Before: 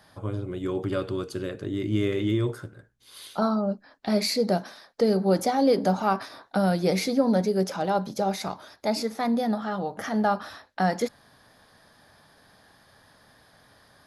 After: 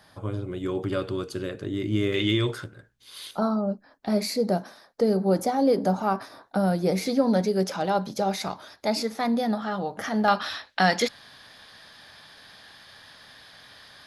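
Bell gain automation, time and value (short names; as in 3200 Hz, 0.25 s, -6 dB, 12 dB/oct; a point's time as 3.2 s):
bell 3200 Hz 2.2 oct
+2 dB
from 2.14 s +12.5 dB
from 2.64 s +5 dB
from 3.31 s -5.5 dB
from 7.06 s +3 dB
from 10.28 s +14.5 dB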